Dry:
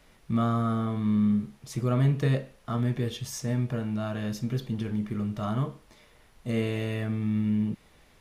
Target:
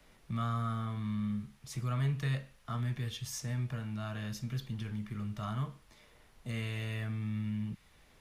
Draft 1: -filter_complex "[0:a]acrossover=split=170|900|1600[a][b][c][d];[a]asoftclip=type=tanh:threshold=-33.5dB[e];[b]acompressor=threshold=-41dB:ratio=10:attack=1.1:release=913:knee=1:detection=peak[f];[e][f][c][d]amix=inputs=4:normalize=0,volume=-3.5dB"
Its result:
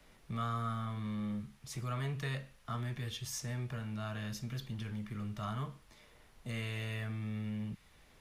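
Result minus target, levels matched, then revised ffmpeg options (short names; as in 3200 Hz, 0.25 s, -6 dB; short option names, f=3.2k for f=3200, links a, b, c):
soft clip: distortion +12 dB
-filter_complex "[0:a]acrossover=split=170|900|1600[a][b][c][d];[a]asoftclip=type=tanh:threshold=-22.5dB[e];[b]acompressor=threshold=-41dB:ratio=10:attack=1.1:release=913:knee=1:detection=peak[f];[e][f][c][d]amix=inputs=4:normalize=0,volume=-3.5dB"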